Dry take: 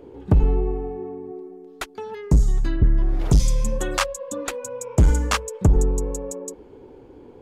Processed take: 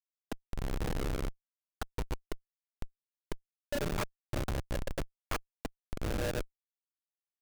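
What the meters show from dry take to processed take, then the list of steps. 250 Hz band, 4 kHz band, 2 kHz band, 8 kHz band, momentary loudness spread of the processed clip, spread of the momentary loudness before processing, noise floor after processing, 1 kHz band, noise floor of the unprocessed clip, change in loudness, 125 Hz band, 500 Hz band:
-14.0 dB, -11.5 dB, -10.5 dB, -17.0 dB, 14 LU, 16 LU, under -85 dBFS, -12.0 dB, -46 dBFS, -16.5 dB, -18.5 dB, -12.0 dB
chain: dynamic bell 1.6 kHz, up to -6 dB, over -45 dBFS, Q 0.99; compression 6:1, threshold -21 dBFS, peak gain reduction 9 dB; mistuned SSB +51 Hz 240–3600 Hz; LFO low-pass saw down 0.78 Hz 530–2800 Hz; Schmitt trigger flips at -24.5 dBFS

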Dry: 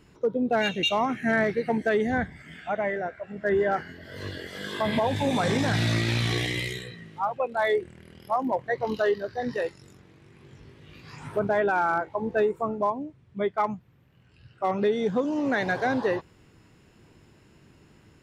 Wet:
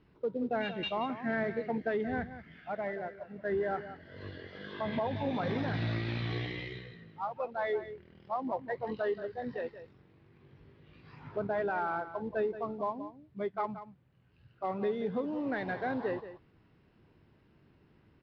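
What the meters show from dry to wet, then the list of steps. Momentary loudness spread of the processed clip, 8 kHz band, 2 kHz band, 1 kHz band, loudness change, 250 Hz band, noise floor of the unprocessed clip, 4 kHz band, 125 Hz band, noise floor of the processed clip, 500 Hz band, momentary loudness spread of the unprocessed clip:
13 LU, under -25 dB, -10.0 dB, -8.5 dB, -8.5 dB, -8.0 dB, -58 dBFS, -13.0 dB, -8.0 dB, -65 dBFS, -8.0 dB, 12 LU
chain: CVSD coder 64 kbps; steep low-pass 4.8 kHz 36 dB/octave; treble shelf 3.4 kHz -10.5 dB; delay 178 ms -12.5 dB; trim -8 dB

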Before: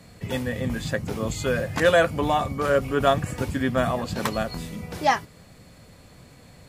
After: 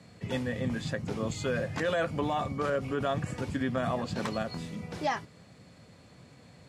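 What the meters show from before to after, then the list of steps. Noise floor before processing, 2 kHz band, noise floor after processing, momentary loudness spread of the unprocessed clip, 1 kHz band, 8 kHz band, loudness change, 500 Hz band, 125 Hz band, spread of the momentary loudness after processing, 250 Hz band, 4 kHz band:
-51 dBFS, -9.0 dB, -56 dBFS, 9 LU, -9.0 dB, -9.0 dB, -7.5 dB, -8.5 dB, -5.5 dB, 5 LU, -5.0 dB, -8.0 dB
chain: bass shelf 190 Hz +4 dB; peak limiter -15 dBFS, peak gain reduction 8.5 dB; band-pass 110–7400 Hz; trim -5 dB

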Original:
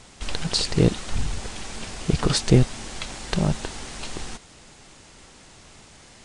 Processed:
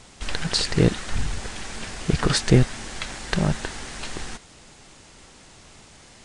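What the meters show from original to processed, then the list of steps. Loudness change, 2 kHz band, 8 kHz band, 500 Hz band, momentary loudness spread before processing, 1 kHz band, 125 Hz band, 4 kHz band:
0.0 dB, +4.5 dB, 0.0 dB, 0.0 dB, 15 LU, +1.5 dB, 0.0 dB, +0.5 dB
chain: dynamic bell 1.7 kHz, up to +7 dB, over -48 dBFS, Q 2

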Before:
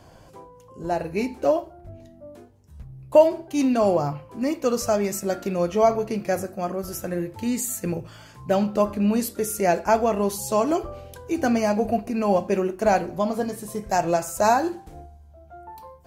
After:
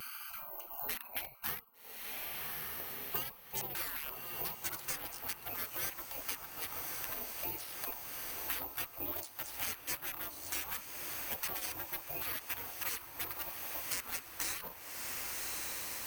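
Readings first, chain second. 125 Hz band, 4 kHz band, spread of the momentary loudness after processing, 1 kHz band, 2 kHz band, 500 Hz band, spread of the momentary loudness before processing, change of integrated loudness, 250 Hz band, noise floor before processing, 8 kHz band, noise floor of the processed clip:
-22.5 dB, -3.0 dB, 4 LU, -21.0 dB, -8.0 dB, -30.5 dB, 10 LU, -15.0 dB, -30.5 dB, -50 dBFS, -7.5 dB, -52 dBFS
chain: local Wiener filter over 25 samples; dynamic bell 200 Hz, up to +4 dB, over -38 dBFS, Q 1.1; spectral gate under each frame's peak -30 dB weak; careless resampling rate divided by 3×, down filtered, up zero stuff; on a send: echo that smears into a reverb 1142 ms, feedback 65%, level -12.5 dB; on the sum: vibrato 0.67 Hz 23 cents; bass shelf 130 Hz -4.5 dB; three bands compressed up and down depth 100%

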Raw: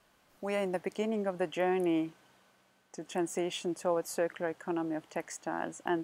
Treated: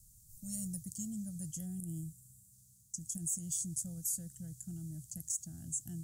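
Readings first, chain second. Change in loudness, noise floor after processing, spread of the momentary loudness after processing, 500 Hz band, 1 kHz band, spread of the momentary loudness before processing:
-5.5 dB, -64 dBFS, 11 LU, -33.0 dB, under -35 dB, 9 LU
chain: time-frequency box 1.65–2.52 s, 1.8–7 kHz -6 dB; elliptic band-stop 120–7400 Hz, stop band 50 dB; peak limiter -41.5 dBFS, peak gain reduction 10 dB; trim +16.5 dB

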